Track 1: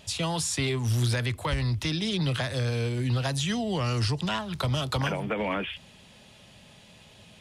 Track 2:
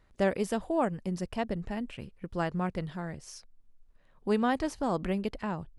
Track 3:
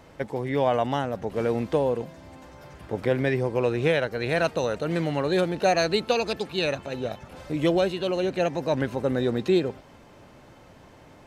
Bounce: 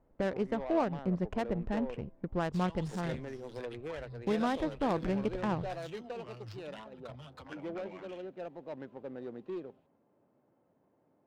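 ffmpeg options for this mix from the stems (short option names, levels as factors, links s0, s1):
-filter_complex "[0:a]crystalizer=i=9:c=0,asplit=2[s0][s1];[s1]adelay=8,afreqshift=0.78[s2];[s0][s2]amix=inputs=2:normalize=1,adelay=2450,volume=0.112[s3];[1:a]agate=range=0.355:threshold=0.00398:ratio=16:detection=peak,alimiter=limit=0.075:level=0:latency=1:release=306,volume=1.26[s4];[2:a]highpass=200,volume=7.08,asoftclip=hard,volume=0.141,highshelf=f=4800:g=6,volume=0.15[s5];[s3][s4][s5]amix=inputs=3:normalize=0,adynamicsmooth=sensitivity=4.5:basefreq=820"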